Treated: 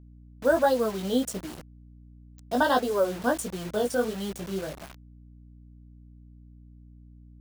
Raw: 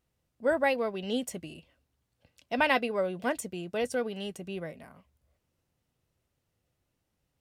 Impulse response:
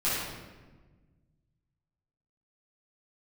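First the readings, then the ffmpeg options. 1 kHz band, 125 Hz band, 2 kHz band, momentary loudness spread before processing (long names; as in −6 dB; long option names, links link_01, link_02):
+4.5 dB, +5.5 dB, −0.5 dB, 14 LU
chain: -af "asuperstop=centerf=2300:order=8:qfactor=1.6,flanger=delay=15.5:depth=5.5:speed=1.4,acrusher=bits=7:mix=0:aa=0.000001,aeval=exprs='val(0)+0.00158*(sin(2*PI*60*n/s)+sin(2*PI*2*60*n/s)/2+sin(2*PI*3*60*n/s)/3+sin(2*PI*4*60*n/s)/4+sin(2*PI*5*60*n/s)/5)':channel_layout=same,volume=7.5dB"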